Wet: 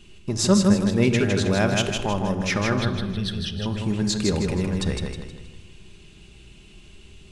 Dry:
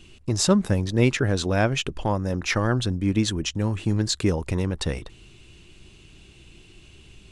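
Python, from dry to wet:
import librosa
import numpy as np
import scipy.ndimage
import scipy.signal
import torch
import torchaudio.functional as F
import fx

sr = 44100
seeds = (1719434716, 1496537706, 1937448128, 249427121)

y = fx.high_shelf(x, sr, hz=7100.0, db=10.5, at=(1.5, 2.01))
y = fx.fixed_phaser(y, sr, hz=1500.0, stages=8, at=(2.79, 3.66))
y = fx.echo_feedback(y, sr, ms=158, feedback_pct=39, wet_db=-4.0)
y = fx.room_shoebox(y, sr, seeds[0], volume_m3=3800.0, walls='furnished', distance_m=1.3)
y = y * librosa.db_to_amplitude(-1.5)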